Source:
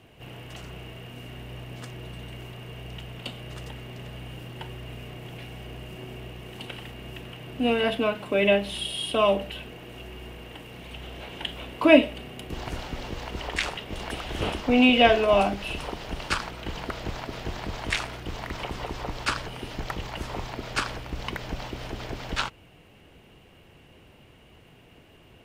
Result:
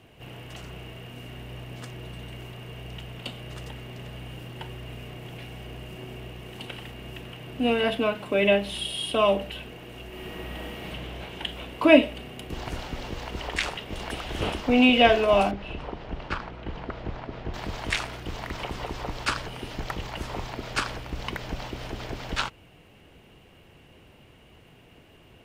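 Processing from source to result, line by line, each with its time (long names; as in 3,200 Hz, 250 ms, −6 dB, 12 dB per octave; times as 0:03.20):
0:10.07–0:10.89: thrown reverb, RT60 2.8 s, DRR −5 dB
0:15.51–0:17.54: head-to-tape spacing loss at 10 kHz 28 dB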